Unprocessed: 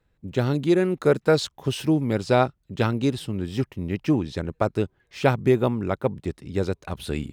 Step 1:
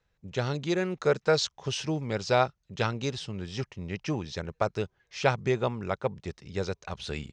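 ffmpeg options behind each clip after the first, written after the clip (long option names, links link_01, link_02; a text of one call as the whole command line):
ffmpeg -i in.wav -af "firequalizer=gain_entry='entry(190,0);entry(270,-7);entry(440,2);entry(800,4);entry(2500,6);entry(3700,6);entry(6100,12);entry(12000,-26)':delay=0.05:min_phase=1,volume=-7dB" out.wav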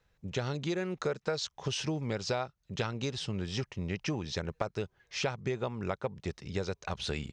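ffmpeg -i in.wav -af "acompressor=threshold=-33dB:ratio=6,volume=3dB" out.wav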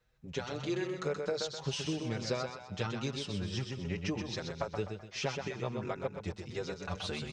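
ffmpeg -i in.wav -filter_complex "[0:a]aecho=1:1:127|254|381|508|635:0.501|0.216|0.0927|0.0398|0.0171,asplit=2[link_01][link_02];[link_02]adelay=6.1,afreqshift=1.4[link_03];[link_01][link_03]amix=inputs=2:normalize=1" out.wav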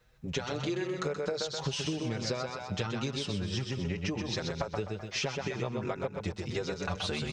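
ffmpeg -i in.wav -af "acompressor=threshold=-39dB:ratio=6,volume=9dB" out.wav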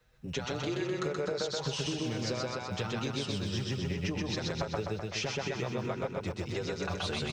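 ffmpeg -i in.wav -filter_complex "[0:a]acrossover=split=110[link_01][link_02];[link_01]acrusher=samples=16:mix=1:aa=0.000001[link_03];[link_03][link_02]amix=inputs=2:normalize=0,aecho=1:1:127|254|381|508|635|762|889:0.376|0.214|0.122|0.0696|0.0397|0.0226|0.0129,volume=-2dB" out.wav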